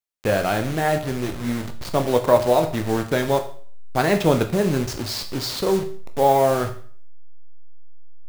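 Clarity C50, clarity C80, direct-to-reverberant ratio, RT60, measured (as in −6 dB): 11.5 dB, 15.0 dB, 6.0 dB, 0.50 s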